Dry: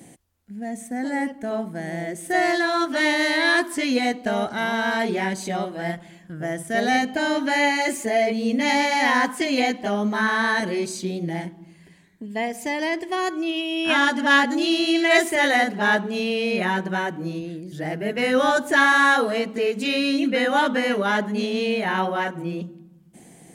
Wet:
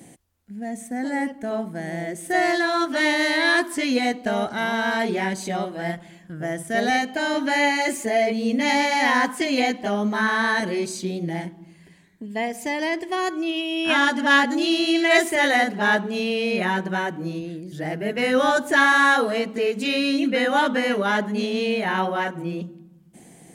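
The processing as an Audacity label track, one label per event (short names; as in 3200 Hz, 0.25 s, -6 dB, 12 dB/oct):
6.900000	7.340000	low shelf 210 Hz -9.5 dB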